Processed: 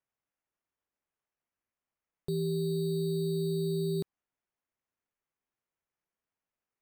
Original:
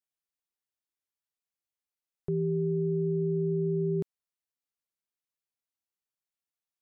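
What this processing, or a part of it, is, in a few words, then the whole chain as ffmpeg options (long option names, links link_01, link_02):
crushed at another speed: -af "asetrate=22050,aresample=44100,acrusher=samples=21:mix=1:aa=0.000001,asetrate=88200,aresample=44100,volume=-2.5dB"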